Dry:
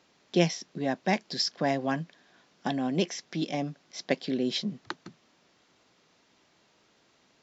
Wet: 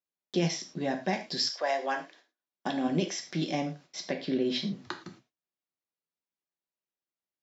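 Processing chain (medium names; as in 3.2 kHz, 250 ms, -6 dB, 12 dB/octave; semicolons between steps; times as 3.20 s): 4.06–4.73 s: Bessel low-pass 3.9 kHz, order 2; gate -53 dBFS, range -37 dB; 1.39–2.87 s: high-pass 620 Hz -> 150 Hz 24 dB/octave; peak limiter -19.5 dBFS, peak gain reduction 10 dB; gated-style reverb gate 140 ms falling, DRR 4 dB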